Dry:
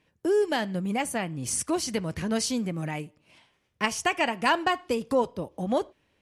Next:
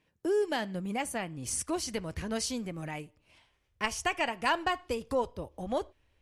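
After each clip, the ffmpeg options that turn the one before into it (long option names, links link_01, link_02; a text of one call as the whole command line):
ffmpeg -i in.wav -af "asubboost=boost=10:cutoff=60,volume=-4.5dB" out.wav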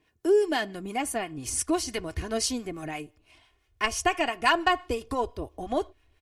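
ffmpeg -i in.wav -filter_complex "[0:a]aecho=1:1:2.8:0.58,acrossover=split=780[link_01][link_02];[link_01]aeval=exprs='val(0)*(1-0.5/2+0.5/2*cos(2*PI*5.9*n/s))':channel_layout=same[link_03];[link_02]aeval=exprs='val(0)*(1-0.5/2-0.5/2*cos(2*PI*5.9*n/s))':channel_layout=same[link_04];[link_03][link_04]amix=inputs=2:normalize=0,volume=5.5dB" out.wav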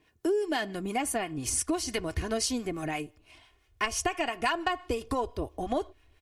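ffmpeg -i in.wav -af "acompressor=threshold=-28dB:ratio=5,volume=2.5dB" out.wav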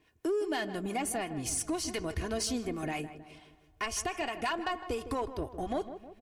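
ffmpeg -i in.wav -filter_complex "[0:a]asplit=2[link_01][link_02];[link_02]alimiter=limit=-22.5dB:level=0:latency=1,volume=-2dB[link_03];[link_01][link_03]amix=inputs=2:normalize=0,asoftclip=type=tanh:threshold=-17dB,asplit=2[link_04][link_05];[link_05]adelay=158,lowpass=frequency=1500:poles=1,volume=-11dB,asplit=2[link_06][link_07];[link_07]adelay=158,lowpass=frequency=1500:poles=1,volume=0.52,asplit=2[link_08][link_09];[link_09]adelay=158,lowpass=frequency=1500:poles=1,volume=0.52,asplit=2[link_10][link_11];[link_11]adelay=158,lowpass=frequency=1500:poles=1,volume=0.52,asplit=2[link_12][link_13];[link_13]adelay=158,lowpass=frequency=1500:poles=1,volume=0.52,asplit=2[link_14][link_15];[link_15]adelay=158,lowpass=frequency=1500:poles=1,volume=0.52[link_16];[link_04][link_06][link_08][link_10][link_12][link_14][link_16]amix=inputs=7:normalize=0,volume=-6.5dB" out.wav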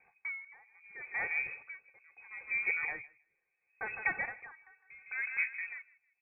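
ffmpeg -i in.wav -af "lowpass=frequency=2200:width_type=q:width=0.5098,lowpass=frequency=2200:width_type=q:width=0.6013,lowpass=frequency=2200:width_type=q:width=0.9,lowpass=frequency=2200:width_type=q:width=2.563,afreqshift=-2600,aeval=exprs='val(0)*pow(10,-30*(0.5-0.5*cos(2*PI*0.74*n/s))/20)':channel_layout=same,volume=3dB" out.wav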